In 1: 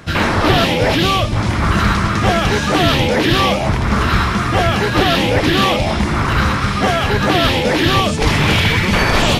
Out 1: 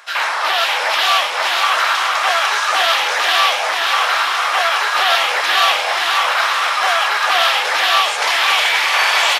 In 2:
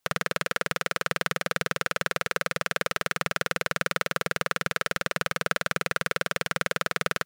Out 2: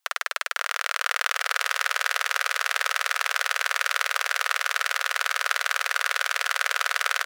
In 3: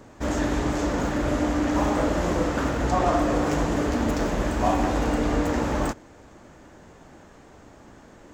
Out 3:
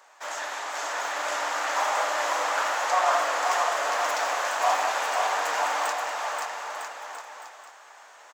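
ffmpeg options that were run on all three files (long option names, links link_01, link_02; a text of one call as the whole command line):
ffmpeg -i in.wav -filter_complex "[0:a]highpass=frequency=760:width=0.5412,highpass=frequency=760:width=1.3066,asplit=2[link_01][link_02];[link_02]aecho=0:1:530|954|1293|1565|1782:0.631|0.398|0.251|0.158|0.1[link_03];[link_01][link_03]amix=inputs=2:normalize=0,dynaudnorm=framelen=230:gausssize=9:maxgain=3.5dB" out.wav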